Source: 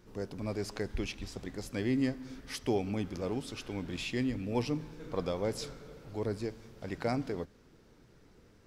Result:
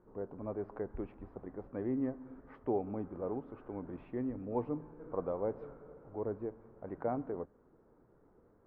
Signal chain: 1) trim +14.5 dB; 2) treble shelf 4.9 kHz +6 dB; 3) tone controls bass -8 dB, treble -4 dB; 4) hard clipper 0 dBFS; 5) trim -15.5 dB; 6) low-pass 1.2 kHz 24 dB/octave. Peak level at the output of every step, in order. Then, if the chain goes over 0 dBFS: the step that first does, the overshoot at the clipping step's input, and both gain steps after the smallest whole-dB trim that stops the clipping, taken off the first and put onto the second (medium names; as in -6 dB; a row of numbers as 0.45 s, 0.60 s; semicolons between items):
-4.5 dBFS, -4.0 dBFS, -4.5 dBFS, -4.5 dBFS, -20.0 dBFS, -21.0 dBFS; nothing clips